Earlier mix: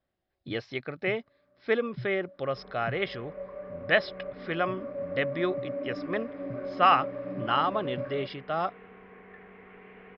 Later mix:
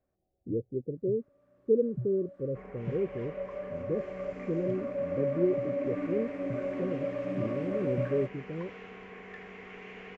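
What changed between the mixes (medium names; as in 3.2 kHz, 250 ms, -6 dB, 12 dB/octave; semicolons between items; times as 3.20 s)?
speech: add steep low-pass 520 Hz 96 dB/octave; second sound: remove distance through air 440 m; master: remove rippled Chebyshev low-pass 5.2 kHz, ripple 3 dB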